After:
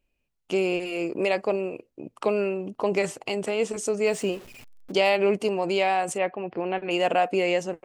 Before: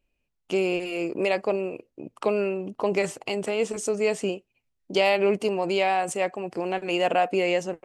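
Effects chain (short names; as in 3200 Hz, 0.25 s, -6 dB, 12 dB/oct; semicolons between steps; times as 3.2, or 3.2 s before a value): 4.06–4.92 zero-crossing step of -40.5 dBFS; 6.18–6.91 inverse Chebyshev low-pass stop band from 8100 Hz, stop band 50 dB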